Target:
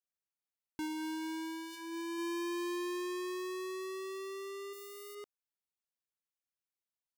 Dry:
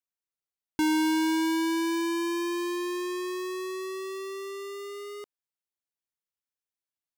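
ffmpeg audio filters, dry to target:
-filter_complex "[0:a]asettb=1/sr,asplit=3[a][b][c];[a]atrim=end=0.854[d];[b]atrim=start=0.85:end=2.18,asetpts=PTS-STARTPTS,afade=t=in:d=0.004:c=qsin,afade=t=out:st=1.326:d=0.004:c=qsin,bandreject=f=81.95:t=h:w=4,bandreject=f=163.9:t=h:w=4,bandreject=f=245.85:t=h:w=4,bandreject=f=327.8:t=h:w=4,bandreject=f=409.75:t=h:w=4,bandreject=f=491.7:t=h:w=4,bandreject=f=573.65:t=h:w=4,bandreject=f=655.6:t=h:w=4,bandreject=f=737.55:t=h:w=4,bandreject=f=819.5:t=h:w=4,bandreject=f=901.45:t=h:w=4,bandreject=f=983.4:t=h:w=4,bandreject=f=1.06535k:t=h:w=4,bandreject=f=1.1473k:t=h:w=4,bandreject=f=1.22925k:t=h:w=4,bandreject=f=1.3112k:t=h:w=4,bandreject=f=1.39315k:t=h:w=4,bandreject=f=1.4751k:t=h:w=4,bandreject=f=1.55705k:t=h:w=4,bandreject=f=1.639k:t=h:w=4,bandreject=f=1.72095k:t=h:w=4,bandreject=f=1.8029k:t=h:w=4,bandreject=f=1.88485k:t=h:w=4,bandreject=f=1.9668k:t=h:w=4,bandreject=f=2.04875k:t=h:w=4,bandreject=f=2.1307k:t=h:w=4,bandreject=f=2.21265k:t=h:w=4,bandreject=f=2.2946k:t=h:w=4,bandreject=f=2.37655k:t=h:w=4,bandreject=f=2.4585k:t=h:w=4,bandreject=f=2.54045k:t=h:w=4,bandreject=f=2.6224k:t=h:w=4[e];[c]atrim=start=2.176[f];[d][e]acrossfade=d=0.004:c1=hsin:c2=qsin[g];[g][f]acrossfade=d=0.004:c1=qsin:c2=hsin,asettb=1/sr,asplit=3[h][i][j];[h]atrim=end=4.734[k];[i]atrim=start=4.73:end=5.15,asetpts=PTS-STARTPTS,afade=t=in:d=0.004:c=qsin,afade=t=out:st=0.416:d=0.004:c=qsin,aemphasis=mode=production:type=50fm[l];[j]atrim=start=5.146[m];[k][l]acrossfade=d=0.004:c1=hsin:c2=qsin[n];[n][m]acrossfade=d=0.004:c1=qsin:c2=hsin,alimiter=level_in=6.5dB:limit=-24dB:level=0:latency=1:release=36,volume=-6.5dB,volume=-6dB"

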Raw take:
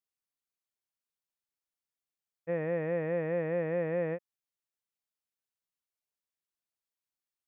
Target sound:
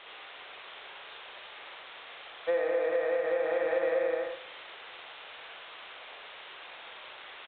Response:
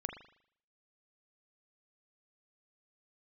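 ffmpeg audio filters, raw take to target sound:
-filter_complex "[0:a]aeval=exprs='val(0)+0.5*0.00794*sgn(val(0))':c=same,highpass=f=440:w=0.5412,highpass=f=440:w=1.3066,acontrast=30,asplit=2[a][b];[1:a]atrim=start_sample=2205,atrim=end_sample=6174,adelay=62[c];[b][c]afir=irnorm=-1:irlink=0,volume=1dB[d];[a][d]amix=inputs=2:normalize=0,acompressor=threshold=-29dB:ratio=20,asplit=2[e][f];[f]adelay=104,lowpass=f=2.5k:p=1,volume=-14dB,asplit=2[g][h];[h]adelay=104,lowpass=f=2.5k:p=1,volume=0.21[i];[e][g][i]amix=inputs=3:normalize=0,volume=4dB" -ar 8000 -c:a adpcm_g726 -b:a 32k

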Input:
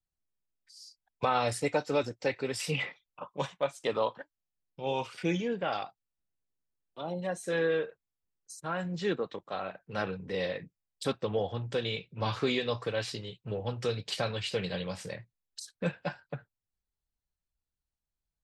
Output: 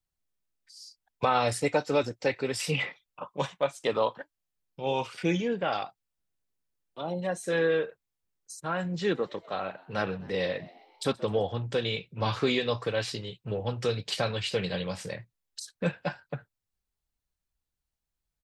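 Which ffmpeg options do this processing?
-filter_complex "[0:a]asplit=3[a][b][c];[a]afade=t=out:st=9.14:d=0.02[d];[b]asplit=6[e][f][g][h][i][j];[f]adelay=128,afreqshift=84,volume=-22dB[k];[g]adelay=256,afreqshift=168,volume=-26.3dB[l];[h]adelay=384,afreqshift=252,volume=-30.6dB[m];[i]adelay=512,afreqshift=336,volume=-34.9dB[n];[j]adelay=640,afreqshift=420,volume=-39.2dB[o];[e][k][l][m][n][o]amix=inputs=6:normalize=0,afade=t=in:st=9.14:d=0.02,afade=t=out:st=11.44:d=0.02[p];[c]afade=t=in:st=11.44:d=0.02[q];[d][p][q]amix=inputs=3:normalize=0,volume=3dB"

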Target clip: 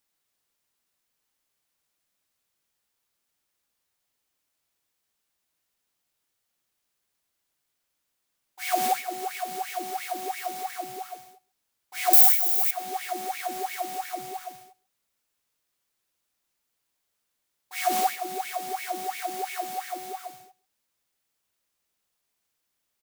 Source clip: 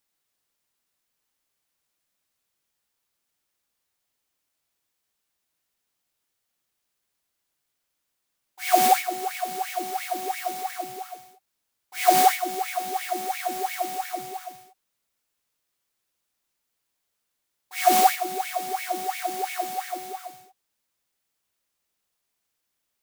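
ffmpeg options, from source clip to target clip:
-filter_complex "[0:a]asettb=1/sr,asplit=3[a][b][c];[a]atrim=end=12.134[d];[b]atrim=start=12.13:end=12.71,asetpts=PTS-STARTPTS,afade=t=in:d=0.004:c=qsin,afade=t=out:st=0.576:d=0.004:c=qsin,aemphasis=mode=production:type=riaa[e];[c]atrim=start=12.706[f];[d][e]acrossfade=d=0.004:c1=hsin:c2=qsin[g];[g][f]acrossfade=d=0.004:c1=qsin:c2=hsin,acompressor=threshold=-33dB:ratio=1.5,aecho=1:1:135:0.0668"

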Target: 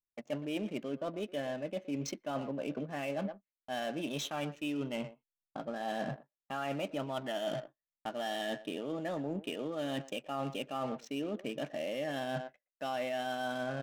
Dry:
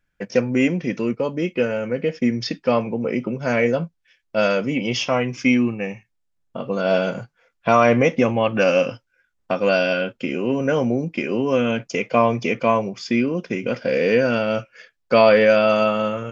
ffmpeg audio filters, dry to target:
-filter_complex "[0:a]agate=range=-23dB:threshold=-40dB:ratio=16:detection=peak,asplit=2[a][b];[b]adelay=140,highpass=300,lowpass=3.4k,asoftclip=type=hard:threshold=-12.5dB,volume=-16dB[c];[a][c]amix=inputs=2:normalize=0,adynamicsmooth=sensitivity=6.5:basefreq=780,asetrate=52038,aresample=44100,areverse,acompressor=threshold=-30dB:ratio=8,areverse,volume=-4dB"

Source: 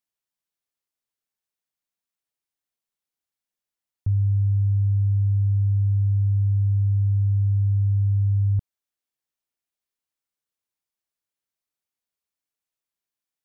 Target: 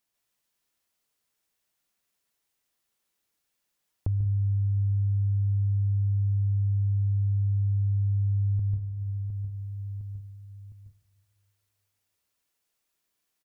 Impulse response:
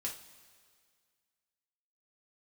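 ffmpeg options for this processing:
-filter_complex "[0:a]aecho=1:1:709|1418|2127:0.141|0.0579|0.0237,asplit=2[a][b];[1:a]atrim=start_sample=2205,adelay=141[c];[b][c]afir=irnorm=-1:irlink=0,volume=0dB[d];[a][d]amix=inputs=2:normalize=0,acompressor=threshold=-39dB:ratio=2.5,volume=7dB"

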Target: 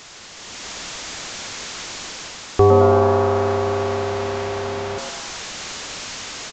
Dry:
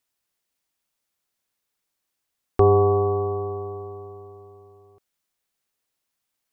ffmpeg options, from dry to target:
-filter_complex "[0:a]aeval=exprs='val(0)+0.5*0.0355*sgn(val(0))':c=same,dynaudnorm=f=340:g=3:m=9dB,asplit=9[a][b][c][d][e][f][g][h][i];[b]adelay=108,afreqshift=140,volume=-7.5dB[j];[c]adelay=216,afreqshift=280,volume=-11.9dB[k];[d]adelay=324,afreqshift=420,volume=-16.4dB[l];[e]adelay=432,afreqshift=560,volume=-20.8dB[m];[f]adelay=540,afreqshift=700,volume=-25.2dB[n];[g]adelay=648,afreqshift=840,volume=-29.7dB[o];[h]adelay=756,afreqshift=980,volume=-34.1dB[p];[i]adelay=864,afreqshift=1120,volume=-38.6dB[q];[a][j][k][l][m][n][o][p][q]amix=inputs=9:normalize=0,aresample=16000,aresample=44100,volume=-2dB"

